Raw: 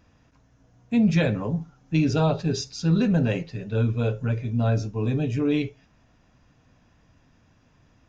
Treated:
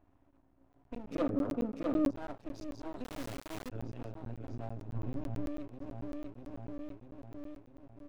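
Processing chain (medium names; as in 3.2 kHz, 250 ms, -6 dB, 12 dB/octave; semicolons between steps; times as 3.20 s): local Wiener filter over 9 samples; FFT filter 110 Hz 0 dB, 180 Hz -28 dB, 280 Hz +10 dB, 450 Hz -12 dB, 710 Hz +6 dB, 1.5 kHz -8 dB; feedback delay 647 ms, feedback 51%, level -7.5 dB; half-wave rectifier; compression 4:1, threshold -33 dBFS, peak gain reduction 17 dB; 1.11–2.11 s: small resonant body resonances 260/480/1200 Hz, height 14 dB, ringing for 20 ms; 3.04–3.69 s: word length cut 6-bit, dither none; 4.89–5.48 s: tone controls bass +6 dB, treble -3 dB; crackling interface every 0.11 s, samples 512, zero, from 0.73 s; trim -5 dB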